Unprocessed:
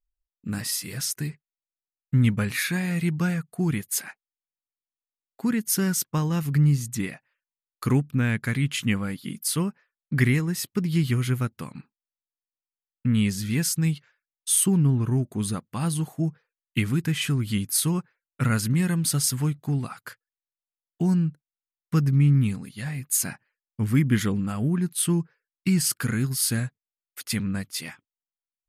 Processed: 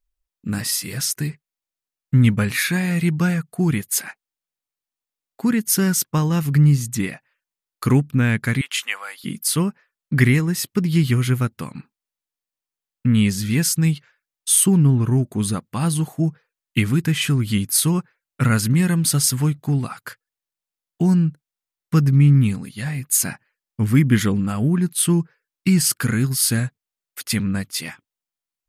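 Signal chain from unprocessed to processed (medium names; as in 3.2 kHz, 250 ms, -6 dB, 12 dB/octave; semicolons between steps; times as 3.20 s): 8.61–9.24 s: high-pass 700 Hz 24 dB/octave; trim +5.5 dB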